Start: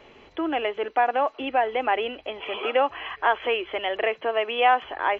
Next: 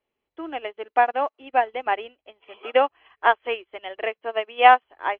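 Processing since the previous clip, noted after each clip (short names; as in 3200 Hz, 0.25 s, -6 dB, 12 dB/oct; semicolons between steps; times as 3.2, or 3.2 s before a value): upward expander 2.5:1, over -42 dBFS; gain +7.5 dB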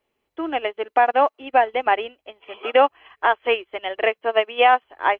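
limiter -12.5 dBFS, peak gain reduction 11 dB; gain +7 dB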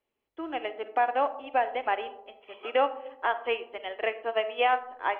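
reverb RT60 0.95 s, pre-delay 4 ms, DRR 11.5 dB; gain -9 dB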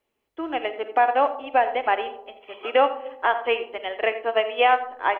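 echo 85 ms -15.5 dB; gain +6 dB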